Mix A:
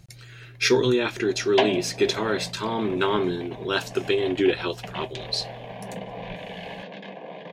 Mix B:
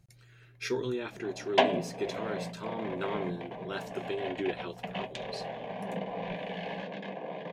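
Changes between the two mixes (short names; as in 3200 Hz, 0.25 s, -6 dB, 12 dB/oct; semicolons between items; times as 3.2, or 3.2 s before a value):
speech -12.0 dB; master: add bell 4200 Hz -5 dB 1.7 oct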